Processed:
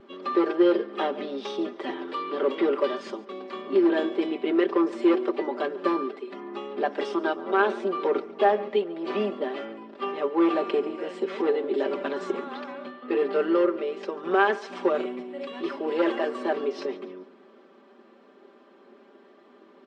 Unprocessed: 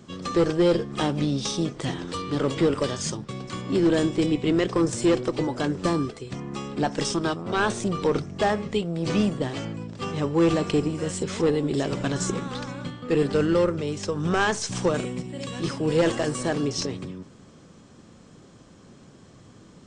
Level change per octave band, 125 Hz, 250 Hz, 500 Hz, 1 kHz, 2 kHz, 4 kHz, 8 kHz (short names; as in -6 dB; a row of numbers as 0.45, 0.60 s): under -20 dB, -2.5 dB, +0.5 dB, +1.5 dB, -0.5 dB, -7.0 dB, under -20 dB